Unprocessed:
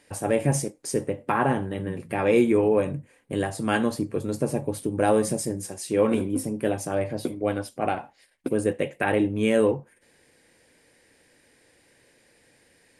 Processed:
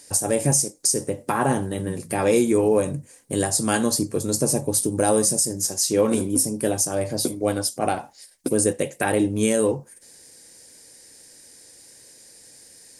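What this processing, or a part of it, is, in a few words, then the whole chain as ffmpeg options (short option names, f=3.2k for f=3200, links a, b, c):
over-bright horn tweeter: -filter_complex "[0:a]asettb=1/sr,asplit=3[a][b][c];[a]atrim=end=5.534[d];[b]atrim=start=5.53:end=6.08,asetpts=PTS-STARTPTS,afade=t=in:d=0.004:c=qsin,afade=t=out:st=0.546:d=0.004:c=qsin,equalizer=f=9k:t=o:w=0.43:g=-7.5[e];[c]atrim=start=6.076[f];[d][e]acrossfade=d=0.004:c1=hsin:c2=qsin[g];[g][f]acrossfade=d=0.004:c1=qsin:c2=hsin,highshelf=f=3.9k:t=q:w=1.5:g=13.5,alimiter=limit=-11.5dB:level=0:latency=1:release=274,volume=3dB"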